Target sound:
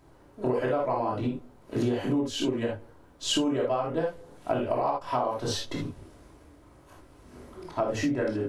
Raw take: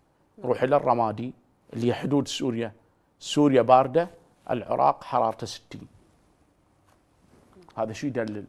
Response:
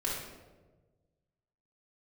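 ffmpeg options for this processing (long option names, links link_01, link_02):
-filter_complex "[1:a]atrim=start_sample=2205,atrim=end_sample=3969[link_01];[0:a][link_01]afir=irnorm=-1:irlink=0,acompressor=threshold=-28dB:ratio=16,volume=4.5dB"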